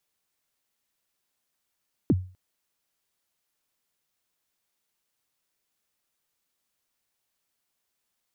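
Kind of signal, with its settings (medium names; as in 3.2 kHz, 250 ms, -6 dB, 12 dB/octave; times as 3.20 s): kick drum length 0.25 s, from 370 Hz, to 92 Hz, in 39 ms, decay 0.37 s, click off, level -14 dB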